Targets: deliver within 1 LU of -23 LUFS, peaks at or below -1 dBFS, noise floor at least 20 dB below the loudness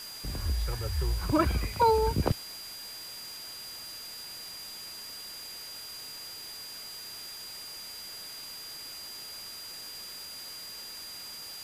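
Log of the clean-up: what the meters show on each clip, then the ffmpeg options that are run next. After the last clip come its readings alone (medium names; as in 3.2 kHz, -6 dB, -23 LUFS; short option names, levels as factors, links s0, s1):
steady tone 4.8 kHz; tone level -42 dBFS; noise floor -43 dBFS; noise floor target -55 dBFS; loudness -34.5 LUFS; peak level -13.0 dBFS; loudness target -23.0 LUFS
-> -af "bandreject=f=4800:w=30"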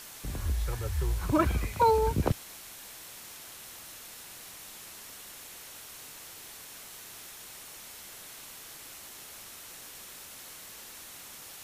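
steady tone not found; noise floor -47 dBFS; noise floor target -55 dBFS
-> -af "afftdn=nr=8:nf=-47"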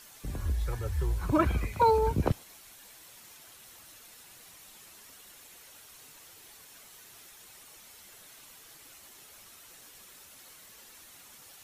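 noise floor -53 dBFS; loudness -29.0 LUFS; peak level -13.5 dBFS; loudness target -23.0 LUFS
-> -af "volume=2"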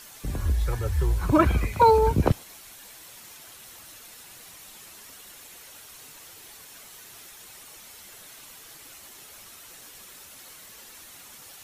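loudness -23.0 LUFS; peak level -7.5 dBFS; noise floor -47 dBFS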